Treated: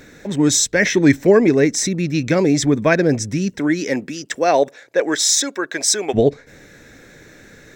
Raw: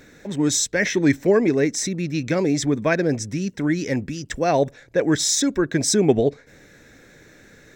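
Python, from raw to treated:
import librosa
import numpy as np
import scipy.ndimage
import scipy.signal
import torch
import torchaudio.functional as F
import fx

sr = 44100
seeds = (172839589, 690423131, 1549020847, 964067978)

y = fx.highpass(x, sr, hz=fx.line((3.58, 220.0), (6.13, 760.0)), slope=12, at=(3.58, 6.13), fade=0.02)
y = y * 10.0 ** (5.0 / 20.0)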